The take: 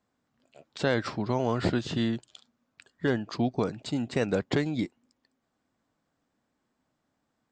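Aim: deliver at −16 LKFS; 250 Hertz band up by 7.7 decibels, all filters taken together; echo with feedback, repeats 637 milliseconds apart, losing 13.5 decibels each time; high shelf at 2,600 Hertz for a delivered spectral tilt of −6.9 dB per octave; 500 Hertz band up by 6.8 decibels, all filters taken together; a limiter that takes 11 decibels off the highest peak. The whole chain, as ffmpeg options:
ffmpeg -i in.wav -af "equalizer=frequency=250:width_type=o:gain=7.5,equalizer=frequency=500:width_type=o:gain=6,highshelf=frequency=2600:gain=-5,alimiter=limit=-18dB:level=0:latency=1,aecho=1:1:637|1274:0.211|0.0444,volume=13dB" out.wav

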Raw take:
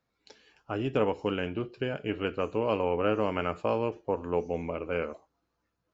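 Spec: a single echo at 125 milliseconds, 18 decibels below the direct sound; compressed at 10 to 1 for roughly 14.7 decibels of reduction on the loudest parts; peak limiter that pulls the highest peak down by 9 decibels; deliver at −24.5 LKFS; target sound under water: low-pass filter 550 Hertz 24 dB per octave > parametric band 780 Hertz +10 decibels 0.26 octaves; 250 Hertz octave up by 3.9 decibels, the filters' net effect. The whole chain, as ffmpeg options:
ffmpeg -i in.wav -af "equalizer=frequency=250:width_type=o:gain=5,acompressor=threshold=-35dB:ratio=10,alimiter=level_in=7.5dB:limit=-24dB:level=0:latency=1,volume=-7.5dB,lowpass=frequency=550:width=0.5412,lowpass=frequency=550:width=1.3066,equalizer=frequency=780:width_type=o:width=0.26:gain=10,aecho=1:1:125:0.126,volume=20dB" out.wav

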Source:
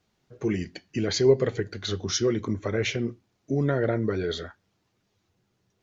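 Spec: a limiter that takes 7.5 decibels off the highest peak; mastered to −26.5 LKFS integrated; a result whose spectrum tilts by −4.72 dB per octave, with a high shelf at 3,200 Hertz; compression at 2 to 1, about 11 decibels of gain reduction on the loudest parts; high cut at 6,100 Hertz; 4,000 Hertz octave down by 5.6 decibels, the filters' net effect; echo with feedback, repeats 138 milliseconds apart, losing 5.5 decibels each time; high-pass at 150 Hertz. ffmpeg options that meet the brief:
ffmpeg -i in.wav -af "highpass=150,lowpass=6100,highshelf=frequency=3200:gain=3,equalizer=frequency=4000:width_type=o:gain=-8.5,acompressor=threshold=-34dB:ratio=2,alimiter=level_in=2dB:limit=-24dB:level=0:latency=1,volume=-2dB,aecho=1:1:138|276|414|552|690|828|966:0.531|0.281|0.149|0.079|0.0419|0.0222|0.0118,volume=9.5dB" out.wav

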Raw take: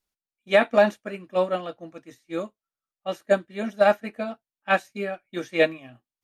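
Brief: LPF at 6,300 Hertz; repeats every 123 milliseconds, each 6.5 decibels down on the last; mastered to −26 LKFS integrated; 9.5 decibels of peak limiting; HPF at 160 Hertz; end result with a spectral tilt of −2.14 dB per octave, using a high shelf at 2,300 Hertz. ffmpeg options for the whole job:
ffmpeg -i in.wav -af "highpass=160,lowpass=6300,highshelf=frequency=2300:gain=8.5,alimiter=limit=-14dB:level=0:latency=1,aecho=1:1:123|246|369|492|615|738:0.473|0.222|0.105|0.0491|0.0231|0.0109,volume=2dB" out.wav

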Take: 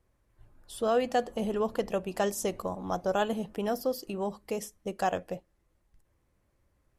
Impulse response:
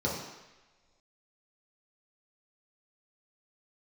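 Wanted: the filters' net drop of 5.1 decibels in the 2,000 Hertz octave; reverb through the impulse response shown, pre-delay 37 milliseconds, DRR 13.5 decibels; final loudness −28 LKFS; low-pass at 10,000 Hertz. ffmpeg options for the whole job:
-filter_complex "[0:a]lowpass=10000,equalizer=frequency=2000:width_type=o:gain=-7,asplit=2[link_01][link_02];[1:a]atrim=start_sample=2205,adelay=37[link_03];[link_02][link_03]afir=irnorm=-1:irlink=0,volume=-22dB[link_04];[link_01][link_04]amix=inputs=2:normalize=0,volume=3.5dB"

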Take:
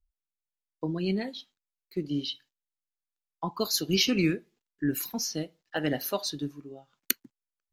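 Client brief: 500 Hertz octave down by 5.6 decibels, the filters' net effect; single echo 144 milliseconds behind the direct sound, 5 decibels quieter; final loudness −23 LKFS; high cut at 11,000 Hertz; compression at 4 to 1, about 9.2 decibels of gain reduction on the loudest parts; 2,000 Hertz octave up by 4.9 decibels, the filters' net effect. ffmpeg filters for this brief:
ffmpeg -i in.wav -af "lowpass=11000,equalizer=frequency=500:width_type=o:gain=-8.5,equalizer=frequency=2000:width_type=o:gain=6.5,acompressor=threshold=-30dB:ratio=4,aecho=1:1:144:0.562,volume=11.5dB" out.wav

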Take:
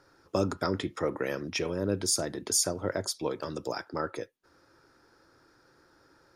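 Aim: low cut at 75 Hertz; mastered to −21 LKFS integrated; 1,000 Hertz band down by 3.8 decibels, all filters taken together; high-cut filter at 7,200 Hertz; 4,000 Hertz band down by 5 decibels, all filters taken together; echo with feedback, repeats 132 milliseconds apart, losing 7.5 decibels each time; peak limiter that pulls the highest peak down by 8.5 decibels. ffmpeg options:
ffmpeg -i in.wav -af "highpass=75,lowpass=7200,equalizer=frequency=1000:width_type=o:gain=-5,equalizer=frequency=4000:width_type=o:gain=-6,alimiter=level_in=0.5dB:limit=-24dB:level=0:latency=1,volume=-0.5dB,aecho=1:1:132|264|396|528|660:0.422|0.177|0.0744|0.0312|0.0131,volume=15dB" out.wav

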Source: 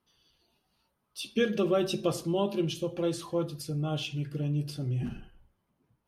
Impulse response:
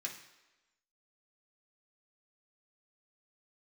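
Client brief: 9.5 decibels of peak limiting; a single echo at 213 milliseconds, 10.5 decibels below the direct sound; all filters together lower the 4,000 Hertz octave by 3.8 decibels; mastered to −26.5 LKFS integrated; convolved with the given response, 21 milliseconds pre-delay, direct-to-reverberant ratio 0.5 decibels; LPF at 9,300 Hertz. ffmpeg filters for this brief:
-filter_complex "[0:a]lowpass=9300,equalizer=frequency=4000:width_type=o:gain=-5,alimiter=level_in=1dB:limit=-24dB:level=0:latency=1,volume=-1dB,aecho=1:1:213:0.299,asplit=2[link_01][link_02];[1:a]atrim=start_sample=2205,adelay=21[link_03];[link_02][link_03]afir=irnorm=-1:irlink=0,volume=0dB[link_04];[link_01][link_04]amix=inputs=2:normalize=0,volume=5dB"

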